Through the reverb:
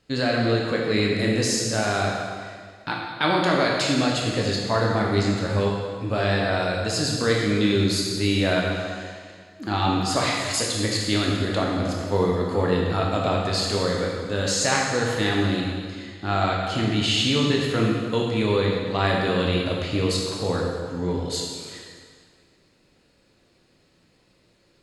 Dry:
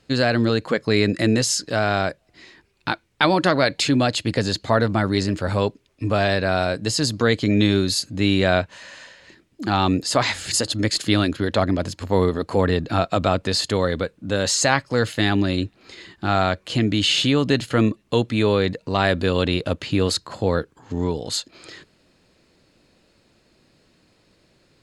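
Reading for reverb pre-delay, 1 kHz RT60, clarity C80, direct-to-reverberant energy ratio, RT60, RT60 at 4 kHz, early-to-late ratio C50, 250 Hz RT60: 7 ms, 1.8 s, 2.0 dB, -2.5 dB, 1.8 s, 1.7 s, 0.5 dB, 1.8 s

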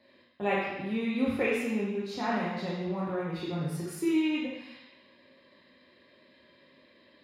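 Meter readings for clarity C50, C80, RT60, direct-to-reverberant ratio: 0.0 dB, 3.0 dB, 1.0 s, -5.5 dB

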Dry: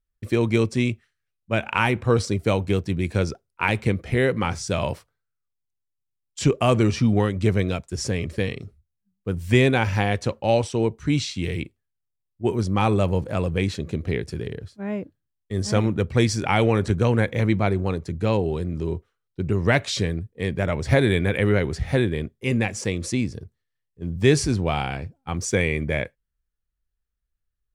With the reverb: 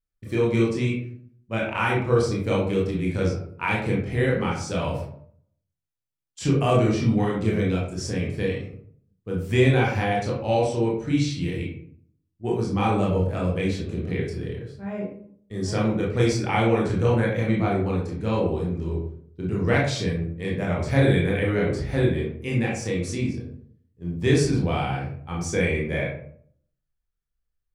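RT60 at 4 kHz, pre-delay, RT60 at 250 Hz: 0.30 s, 20 ms, 0.75 s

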